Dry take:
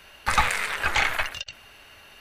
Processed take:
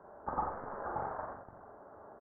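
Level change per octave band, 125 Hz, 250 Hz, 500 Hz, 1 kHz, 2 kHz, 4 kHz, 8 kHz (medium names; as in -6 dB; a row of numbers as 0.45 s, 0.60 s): -13.0 dB, -5.0 dB, -4.0 dB, -10.0 dB, -27.5 dB, under -40 dB, under -40 dB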